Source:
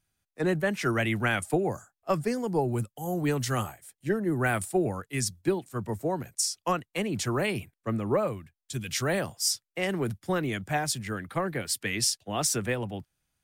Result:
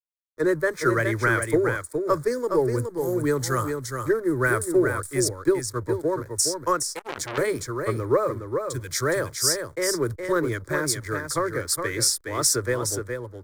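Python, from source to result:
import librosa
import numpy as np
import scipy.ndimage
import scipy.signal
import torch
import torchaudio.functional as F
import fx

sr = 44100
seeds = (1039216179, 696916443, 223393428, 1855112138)

p1 = fx.backlash(x, sr, play_db=-42.0)
p2 = fx.fixed_phaser(p1, sr, hz=750.0, stages=6)
p3 = p2 + fx.echo_single(p2, sr, ms=416, db=-6.0, dry=0)
p4 = fx.transformer_sat(p3, sr, knee_hz=2500.0, at=(6.92, 7.38))
y = p4 * librosa.db_to_amplitude(7.0)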